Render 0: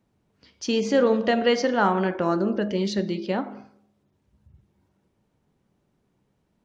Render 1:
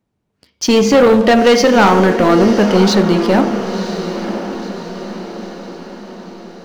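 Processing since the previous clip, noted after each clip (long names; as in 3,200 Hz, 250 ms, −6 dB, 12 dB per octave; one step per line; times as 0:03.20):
leveller curve on the samples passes 3
feedback delay with all-pass diffusion 1,007 ms, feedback 52%, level −10 dB
level +4 dB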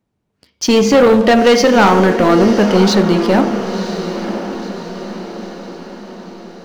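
no processing that can be heard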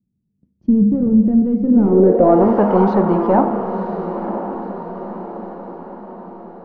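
low-pass filter sweep 200 Hz → 940 Hz, 0:01.63–0:02.47
level −4 dB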